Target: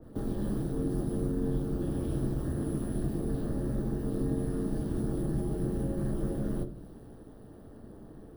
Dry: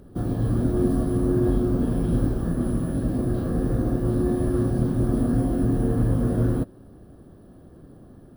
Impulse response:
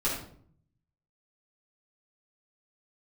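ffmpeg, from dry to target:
-filter_complex "[0:a]acrossover=split=210|520[link_01][link_02][link_03];[link_01]acompressor=threshold=-28dB:ratio=4[link_04];[link_02]acompressor=threshold=-37dB:ratio=4[link_05];[link_03]acompressor=threshold=-49dB:ratio=4[link_06];[link_04][link_05][link_06]amix=inputs=3:normalize=0,equalizer=frequency=81:width=1.7:gain=-10.5,aeval=exprs='val(0)*sin(2*PI*91*n/s)':channel_layout=same,asplit=2[link_07][link_08];[1:a]atrim=start_sample=2205[link_09];[link_08][link_09]afir=irnorm=-1:irlink=0,volume=-14.5dB[link_10];[link_07][link_10]amix=inputs=2:normalize=0,adynamicequalizer=threshold=0.00178:dfrequency=2300:dqfactor=0.7:tfrequency=2300:tqfactor=0.7:attack=5:release=100:ratio=0.375:range=3:mode=boostabove:tftype=highshelf"

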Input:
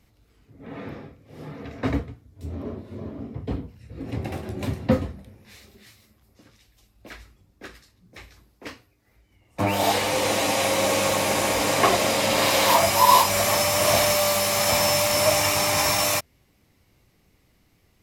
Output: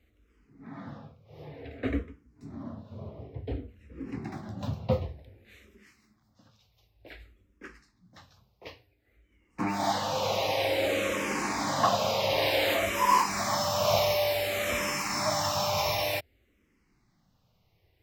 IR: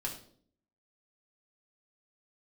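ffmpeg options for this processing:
-filter_complex "[0:a]equalizer=frequency=10000:width_type=o:width=0.76:gain=-14.5,asplit=2[link_01][link_02];[link_02]afreqshift=-0.55[link_03];[link_01][link_03]amix=inputs=2:normalize=1,volume=-3dB"

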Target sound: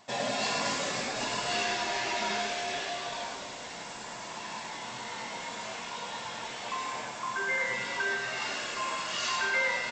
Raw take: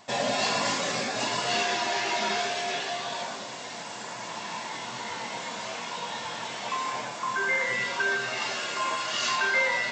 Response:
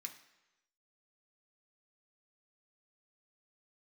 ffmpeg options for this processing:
-filter_complex "[0:a]asplit=6[link_01][link_02][link_03][link_04][link_05][link_06];[link_02]adelay=455,afreqshift=-110,volume=-16dB[link_07];[link_03]adelay=910,afreqshift=-220,volume=-20.9dB[link_08];[link_04]adelay=1365,afreqshift=-330,volume=-25.8dB[link_09];[link_05]adelay=1820,afreqshift=-440,volume=-30.6dB[link_10];[link_06]adelay=2275,afreqshift=-550,volume=-35.5dB[link_11];[link_01][link_07][link_08][link_09][link_10][link_11]amix=inputs=6:normalize=0,asplit=2[link_12][link_13];[1:a]atrim=start_sample=2205,adelay=102[link_14];[link_13][link_14]afir=irnorm=-1:irlink=0,volume=-2.5dB[link_15];[link_12][link_15]amix=inputs=2:normalize=0,volume=-4.5dB"

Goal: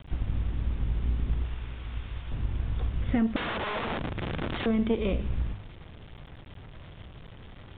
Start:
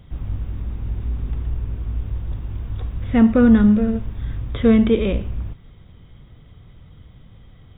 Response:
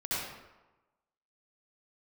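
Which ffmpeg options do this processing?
-filter_complex "[0:a]bandreject=frequency=50.27:width_type=h:width=4,bandreject=frequency=100.54:width_type=h:width=4,bandreject=frequency=150.81:width_type=h:width=4,bandreject=frequency=201.08:width_type=h:width=4,asettb=1/sr,asplit=3[link_01][link_02][link_03];[link_01]atrim=end=1.464[link_04];[link_02]atrim=start=1.46:end=2.32,asetpts=PTS-STARTPTS,afade=type=in:duration=0.004:curve=qsin,afade=type=out:start_time=0.856:duration=0.004:curve=qsin,tiltshelf=frequency=970:gain=-9.5[link_05];[link_03]atrim=start=2.316[link_06];[link_04][link_05]acrossfade=duration=0.004:curve1=hsin:curve2=qsin[link_07];[link_07][link_06]acrossfade=duration=0.004:curve1=qsin:curve2=hsin,acompressor=threshold=-23dB:ratio=6,aeval=exprs='0.188*(cos(1*acos(clip(val(0)/0.188,-1,1)))-cos(1*PI/2))+0.0531*(cos(2*acos(clip(val(0)/0.188,-1,1)))-cos(2*PI/2))+0.00531*(cos(4*acos(clip(val(0)/0.188,-1,1)))-cos(4*PI/2))+0.00473*(cos(7*acos(clip(val(0)/0.188,-1,1)))-cos(7*PI/2))':channel_layout=same,asettb=1/sr,asplit=3[link_08][link_09][link_10];[link_08]atrim=end=3.364[link_11];[link_09]atrim=start=3.36:end=4.66,asetpts=PTS-STARTPTS,afade=type=in:duration=0.004:curve=qsin,afade=type=out:start_time=1.296:duration=0.004:curve=qsin,aeval=exprs='(mod(21.1*val(0)+1,2)-1)/21.1':channel_layout=same[link_12];[link_10]atrim=start=4.656[link_13];[link_11][link_12]acrossfade=duration=0.004:curve1=hsin:curve2=qsin[link_14];[link_14][link_13]acrossfade=duration=0.004:curve1=qsin:curve2=hsin,acrusher=bits=7:mix=0:aa=0.000001,aresample=8000,aresample=44100"

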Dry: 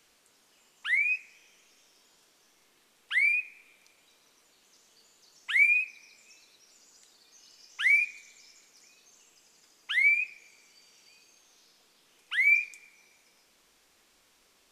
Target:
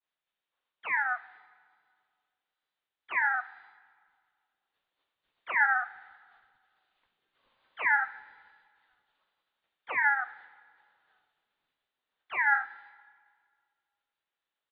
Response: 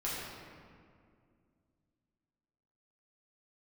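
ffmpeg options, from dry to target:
-filter_complex "[0:a]agate=range=-33dB:threshold=-52dB:ratio=3:detection=peak,lowpass=frequency=3400:width_type=q:width=0.5098,lowpass=frequency=3400:width_type=q:width=0.6013,lowpass=frequency=3400:width_type=q:width=0.9,lowpass=frequency=3400:width_type=q:width=2.563,afreqshift=-4000,asplit=4[link_01][link_02][link_03][link_04];[link_02]asetrate=22050,aresample=44100,atempo=2,volume=-5dB[link_05];[link_03]asetrate=37084,aresample=44100,atempo=1.18921,volume=-4dB[link_06];[link_04]asetrate=52444,aresample=44100,atempo=0.840896,volume=-9dB[link_07];[link_01][link_05][link_06][link_07]amix=inputs=4:normalize=0,asplit=2[link_08][link_09];[1:a]atrim=start_sample=2205,adelay=41[link_10];[link_09][link_10]afir=irnorm=-1:irlink=0,volume=-25.5dB[link_11];[link_08][link_11]amix=inputs=2:normalize=0,volume=-5dB"

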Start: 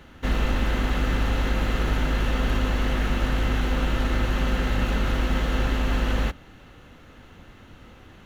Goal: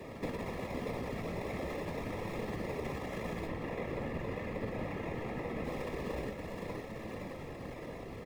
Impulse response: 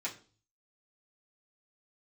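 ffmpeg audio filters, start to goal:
-filter_complex "[0:a]asoftclip=type=tanh:threshold=-20dB,highpass=frequency=74:width=0.5412,highpass=frequency=74:width=1.3066,acrusher=samples=29:mix=1:aa=0.000001,aecho=1:1:516|1032|1548|2064|2580|3096:0.398|0.195|0.0956|0.0468|0.023|0.0112,acompressor=threshold=-44dB:ratio=3,equalizer=frequency=125:width_type=o:width=1:gain=9,equalizer=frequency=250:width_type=o:width=1:gain=3,equalizer=frequency=500:width_type=o:width=1:gain=12,equalizer=frequency=1000:width_type=o:width=1:gain=4,equalizer=frequency=2000:width_type=o:width=1:gain=11,equalizer=frequency=4000:width_type=o:width=1:gain=3,asettb=1/sr,asplit=3[link_01][link_02][link_03];[link_01]atrim=end=3.474[link_04];[link_02]atrim=start=3.47:end=5.65,asetpts=PTS-STARTPTS,afade=type=in:duration=0.004:curve=qsin,afade=type=out:start_time=2.176:duration=0.004:curve=qsin,acrossover=split=3300[link_05][link_06];[link_06]acompressor=threshold=-55dB:ratio=4:attack=1:release=60[link_07];[link_05][link_07]amix=inputs=2:normalize=0[link_08];[link_03]atrim=start=5.646[link_09];[link_04][link_08]acrossfade=duration=0.004:curve1=hsin:curve2=qsin[link_10];[link_10][link_09]acrossfade=duration=0.004:curve1=qsin:curve2=hsin,afftfilt=real='hypot(re,im)*cos(2*PI*random(0))':imag='hypot(re,im)*sin(2*PI*random(1))':win_size=512:overlap=0.75,bandreject=frequency=1500:width=5.7,afreqshift=-18,equalizer=frequency=3800:width_type=o:width=0.26:gain=-2,flanger=delay=9.1:depth=9.1:regen=72:speed=0.43:shape=sinusoidal,volume=6dB"

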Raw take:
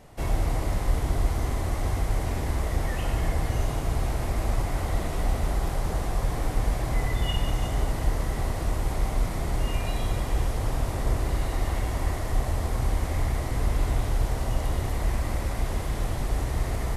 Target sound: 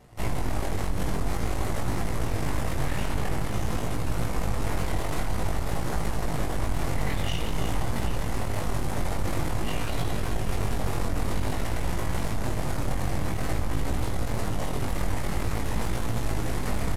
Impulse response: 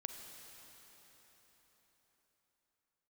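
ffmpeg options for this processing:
-af "alimiter=limit=-22.5dB:level=0:latency=1:release=39,equalizer=frequency=120:width=2.5:gain=6.5,aecho=1:1:787:0.251,aeval=exprs='0.119*(cos(1*acos(clip(val(0)/0.119,-1,1)))-cos(1*PI/2))+0.0531*(cos(6*acos(clip(val(0)/0.119,-1,1)))-cos(6*PI/2))':channel_layout=same,flanger=delay=17.5:depth=3.6:speed=0.5"

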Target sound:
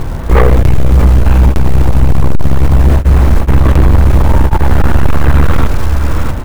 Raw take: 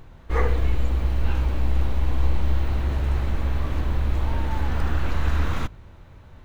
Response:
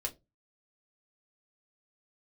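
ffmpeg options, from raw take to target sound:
-filter_complex "[0:a]lowpass=frequency=1300:poles=1,aecho=1:1:647|1294:0.15|0.0359,asoftclip=type=hard:threshold=-21dB,asettb=1/sr,asplit=3[link_01][link_02][link_03];[link_01]atrim=end=3.494[link_04];[link_02]atrim=start=3.49:end=3.99,asetpts=PTS-STARTPTS,afade=type=in:duration=0.004:curve=qsin,afade=type=out:start_time=0.496:duration=0.004:curve=qsin,acontrast=48[link_05];[link_03]atrim=start=3.986[link_06];[link_04][link_05]acrossfade=duration=0.004:curve1=hsin:curve2=qsin[link_07];[link_07][link_06]acrossfade=duration=0.004:curve1=qsin:curve2=hsin,acrusher=bits=6:mode=log:mix=0:aa=0.000001,asoftclip=type=tanh:threshold=-21.5dB,alimiter=level_in=29.5dB:limit=-1dB:release=50:level=0:latency=1,volume=-1dB"

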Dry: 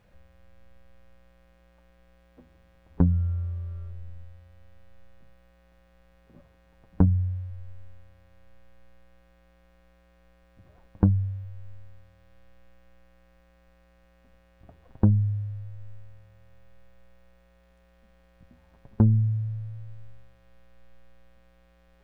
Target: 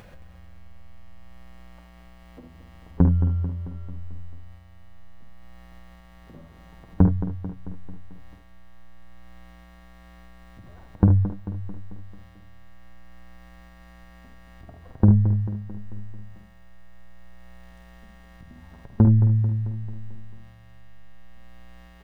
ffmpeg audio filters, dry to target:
ffmpeg -i in.wav -filter_complex "[0:a]asplit=2[link_01][link_02];[link_02]aecho=0:1:49|73:0.447|0.316[link_03];[link_01][link_03]amix=inputs=2:normalize=0,acompressor=mode=upward:threshold=-41dB:ratio=2.5,asplit=2[link_04][link_05];[link_05]aecho=0:1:221|442|663|884|1105|1326:0.282|0.161|0.0916|0.0522|0.0298|0.017[link_06];[link_04][link_06]amix=inputs=2:normalize=0,volume=3dB" out.wav

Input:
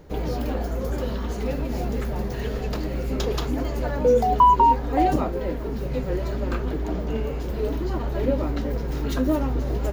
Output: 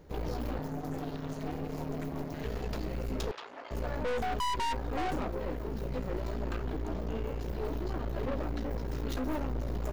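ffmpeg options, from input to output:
ffmpeg -i in.wav -filter_complex "[0:a]asettb=1/sr,asplit=3[link_01][link_02][link_03];[link_01]atrim=end=0.594[link_04];[link_02]atrim=start=0.59:end=2.44,asetpts=PTS-STARTPTS,afade=type=in:duration=0.004:curve=qsin,afade=type=out:start_time=1.846:duration=0.004:curve=qsin,aeval=exprs='val(0)*sin(2*PI*210*n/s)':channel_layout=same[link_05];[link_03]atrim=start=2.436[link_06];[link_04][link_05]acrossfade=duration=0.004:curve1=hsin:curve2=qsin[link_07];[link_07][link_06]acrossfade=duration=0.004:curve1=qsin:curve2=hsin,aeval=exprs='(tanh(22.4*val(0)+0.65)-tanh(0.65))/22.4':channel_layout=same,asettb=1/sr,asplit=3[link_08][link_09][link_10];[link_08]atrim=end=3.314[link_11];[link_09]atrim=start=3.31:end=3.71,asetpts=PTS-STARTPTS,afade=type=in:duration=0.004:curve=qsin,afade=type=out:start_time=0.396:duration=0.004:curve=qsin,highpass=800,lowpass=3200[link_12];[link_10]atrim=start=3.706[link_13];[link_11][link_12]acrossfade=duration=0.004:curve1=hsin:curve2=qsin[link_14];[link_14][link_13]acrossfade=duration=0.004:curve1=qsin:curve2=hsin,volume=-3.5dB" out.wav

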